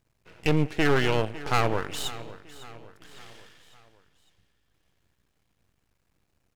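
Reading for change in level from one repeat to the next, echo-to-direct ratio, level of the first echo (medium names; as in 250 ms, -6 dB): -6.0 dB, -16.0 dB, -17.0 dB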